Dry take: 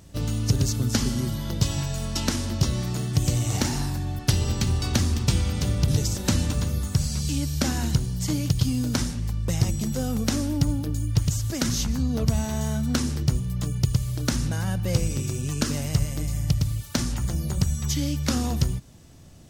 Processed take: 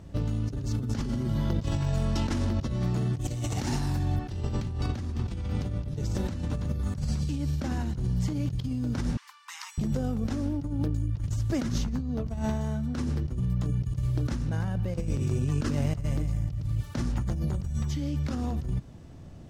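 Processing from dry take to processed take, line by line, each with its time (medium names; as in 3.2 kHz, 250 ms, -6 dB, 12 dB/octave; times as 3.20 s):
3.21–4.16 s: treble shelf 3 kHz +9 dB
9.17–9.78 s: steep high-pass 930 Hz 72 dB/octave
whole clip: low-pass 1.3 kHz 6 dB/octave; compressor with a negative ratio -29 dBFS, ratio -1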